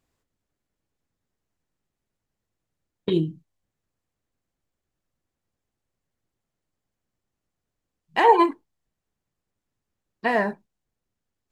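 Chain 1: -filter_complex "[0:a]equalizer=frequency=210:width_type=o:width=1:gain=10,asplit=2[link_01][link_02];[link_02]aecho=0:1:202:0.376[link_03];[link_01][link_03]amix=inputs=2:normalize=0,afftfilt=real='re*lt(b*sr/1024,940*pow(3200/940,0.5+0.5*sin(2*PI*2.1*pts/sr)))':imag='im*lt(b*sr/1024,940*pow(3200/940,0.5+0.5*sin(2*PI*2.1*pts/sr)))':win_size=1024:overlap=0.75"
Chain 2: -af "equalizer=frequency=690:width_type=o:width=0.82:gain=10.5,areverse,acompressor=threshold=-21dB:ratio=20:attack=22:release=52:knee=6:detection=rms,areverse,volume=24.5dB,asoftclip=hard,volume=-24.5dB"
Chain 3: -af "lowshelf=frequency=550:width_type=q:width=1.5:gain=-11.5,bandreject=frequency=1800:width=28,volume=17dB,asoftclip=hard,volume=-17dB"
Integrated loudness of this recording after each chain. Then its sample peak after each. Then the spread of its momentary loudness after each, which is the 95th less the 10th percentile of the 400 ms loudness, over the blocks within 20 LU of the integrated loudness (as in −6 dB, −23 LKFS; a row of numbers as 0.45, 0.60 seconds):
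−21.0, −30.5, −25.0 LKFS; −3.0, −24.5, −17.0 dBFS; 14, 15, 16 LU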